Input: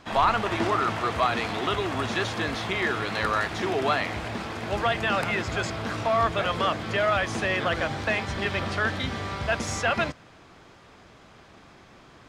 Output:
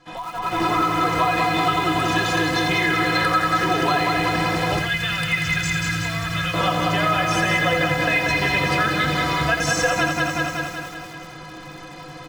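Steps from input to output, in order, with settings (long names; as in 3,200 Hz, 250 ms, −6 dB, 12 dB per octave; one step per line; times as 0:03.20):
stiff-string resonator 150 Hz, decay 0.21 s, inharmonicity 0.03
repeating echo 187 ms, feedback 58%, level −5 dB
downward compressor 5 to 1, threshold −40 dBFS, peak gain reduction 14.5 dB
0:04.79–0:06.54: flat-topped bell 520 Hz −14 dB 2.5 octaves
automatic gain control gain up to 15.5 dB
feedback echo at a low word length 85 ms, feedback 35%, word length 7 bits, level −7 dB
level +6.5 dB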